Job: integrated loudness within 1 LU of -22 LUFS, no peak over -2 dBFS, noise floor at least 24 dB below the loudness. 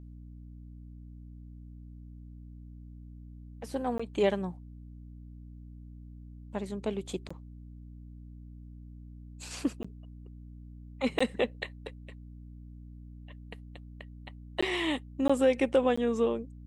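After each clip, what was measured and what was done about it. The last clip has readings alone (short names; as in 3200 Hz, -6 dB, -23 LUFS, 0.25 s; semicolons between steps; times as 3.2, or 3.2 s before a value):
dropouts 7; longest dropout 15 ms; hum 60 Hz; harmonics up to 300 Hz; hum level -45 dBFS; loudness -31.0 LUFS; peak -14.0 dBFS; loudness target -22.0 LUFS
-> interpolate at 3.98/7.29/9.83/11.19/14.61/15.28/15.96, 15 ms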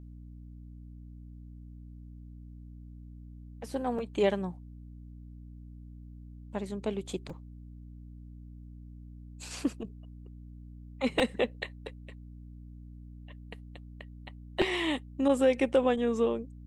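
dropouts 0; hum 60 Hz; harmonics up to 300 Hz; hum level -45 dBFS
-> de-hum 60 Hz, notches 5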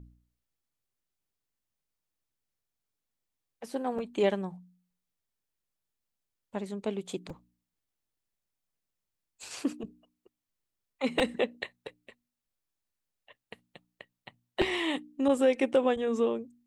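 hum none; loudness -30.5 LUFS; peak -12.5 dBFS; loudness target -22.0 LUFS
-> gain +8.5 dB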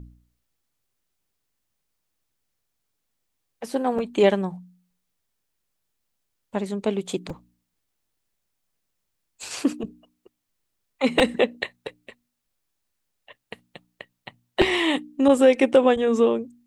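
loudness -22.0 LUFS; peak -4.0 dBFS; noise floor -78 dBFS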